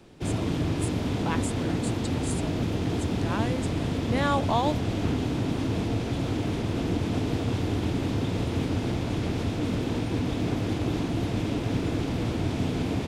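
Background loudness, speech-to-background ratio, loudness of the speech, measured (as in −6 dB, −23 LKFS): −28.5 LKFS, −5.0 dB, −33.5 LKFS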